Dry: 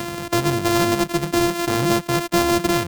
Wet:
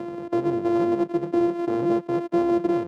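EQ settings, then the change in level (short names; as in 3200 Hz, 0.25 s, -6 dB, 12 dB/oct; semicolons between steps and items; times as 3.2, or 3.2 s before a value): band-pass 400 Hz, Q 1.4; 0.0 dB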